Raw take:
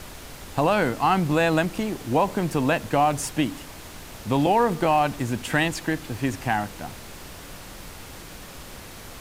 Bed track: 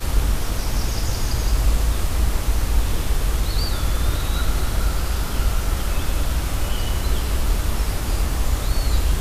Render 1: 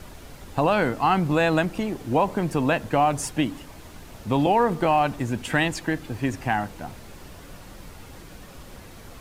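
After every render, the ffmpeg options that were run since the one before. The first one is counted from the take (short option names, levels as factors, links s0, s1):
-af "afftdn=nr=7:nf=-41"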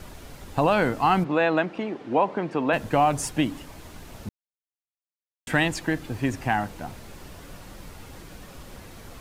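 -filter_complex "[0:a]asplit=3[s0][s1][s2];[s0]afade=t=out:st=1.23:d=0.02[s3];[s1]highpass=250,lowpass=3000,afade=t=in:st=1.23:d=0.02,afade=t=out:st=2.72:d=0.02[s4];[s2]afade=t=in:st=2.72:d=0.02[s5];[s3][s4][s5]amix=inputs=3:normalize=0,asplit=3[s6][s7][s8];[s6]atrim=end=4.29,asetpts=PTS-STARTPTS,afade=t=out:st=4.286:d=0.004:c=hsin[s9];[s7]atrim=start=4.29:end=5.47,asetpts=PTS-STARTPTS,volume=0[s10];[s8]atrim=start=5.47,asetpts=PTS-STARTPTS,afade=t=in:d=0.004:c=hsin[s11];[s9][s10][s11]concat=n=3:v=0:a=1"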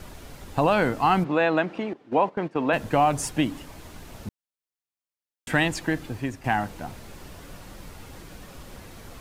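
-filter_complex "[0:a]asettb=1/sr,asplit=3[s0][s1][s2];[s0]atrim=end=1.934[s3];[s1]atrim=start=1.93:end=2.67,asetpts=PTS-STARTPTS,afade=t=in:d=0.004:c=qsin,afade=t=out:st=0.736:d=0.004:c=qsin,agate=range=0.224:threshold=0.0282:ratio=16:release=100:detection=peak[s4];[s2]atrim=start=2.666[s5];[s3][s4]acrossfade=d=0.004:c1=hsin:c2=qsin[s6];[s6][s5]acrossfade=d=0.004:c1=qsin:c2=hsin,asplit=2[s7][s8];[s7]atrim=end=6.44,asetpts=PTS-STARTPTS,afade=t=out:st=6.03:d=0.41:silence=0.316228[s9];[s8]atrim=start=6.44,asetpts=PTS-STARTPTS,afade=t=in:d=0.004:c=hsin:silence=0.316228[s10];[s9][s10]concat=n=2:v=0:a=1"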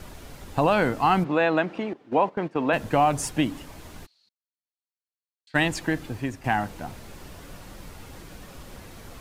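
-filter_complex "[0:a]asplit=3[s0][s1][s2];[s0]afade=t=out:st=4.05:d=0.02[s3];[s1]bandpass=f=4300:t=q:w=15,afade=t=in:st=4.05:d=0.02,afade=t=out:st=5.54:d=0.02[s4];[s2]afade=t=in:st=5.54:d=0.02[s5];[s3][s4][s5]amix=inputs=3:normalize=0"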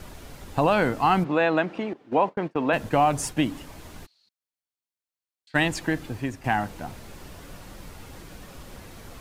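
-filter_complex "[0:a]asettb=1/sr,asplit=3[s0][s1][s2];[s0]atrim=end=2.174[s3];[s1]atrim=start=2.17:end=3.52,asetpts=PTS-STARTPTS,afade=t=in:d=0.004:c=qsin,afade=t=out:st=1.346:d=0.004:c=qsin,agate=range=0.0224:threshold=0.0141:ratio=3:release=100:detection=peak[s4];[s2]atrim=start=3.516[s5];[s3][s4]acrossfade=d=0.004:c1=hsin:c2=qsin[s6];[s6][s5]acrossfade=d=0.004:c1=qsin:c2=hsin"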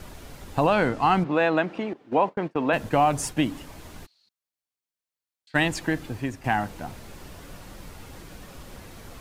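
-filter_complex "[0:a]asettb=1/sr,asplit=3[s0][s1][s2];[s0]atrim=end=0.674[s3];[s1]atrim=start=0.67:end=1.52,asetpts=PTS-STARTPTS,afade=t=in:d=0.004:c=qsin,afade=t=out:st=0.846:d=0.004:c=qsin,adynamicsmooth=sensitivity=7.5:basefreq=8000[s4];[s2]atrim=start=1.516[s5];[s3][s4]acrossfade=d=0.004:c1=hsin:c2=qsin[s6];[s6][s5]acrossfade=d=0.004:c1=qsin:c2=hsin"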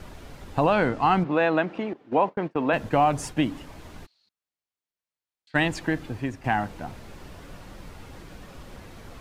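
-af "highshelf=f=6400:g=-9.5"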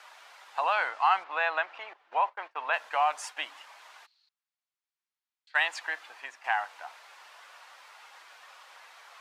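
-af "highpass=f=840:w=0.5412,highpass=f=840:w=1.3066,highshelf=f=9200:g=-12"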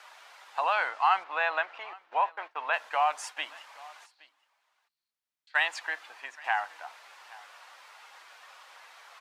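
-af "aecho=1:1:820:0.075"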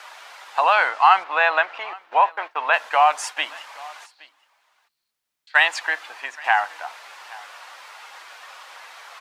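-af "volume=3.16,alimiter=limit=0.794:level=0:latency=1"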